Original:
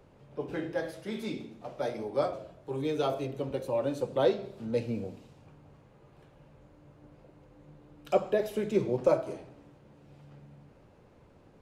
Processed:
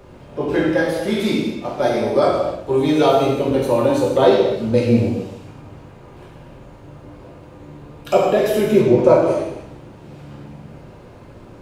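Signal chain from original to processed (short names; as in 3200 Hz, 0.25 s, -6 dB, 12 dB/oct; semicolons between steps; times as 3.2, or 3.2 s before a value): 8.61–9.28 high shelf 5100 Hz -8.5 dB; in parallel at +2 dB: limiter -24 dBFS, peak gain reduction 11 dB; on the sum: non-linear reverb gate 0.33 s falling, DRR -3 dB; gain +5.5 dB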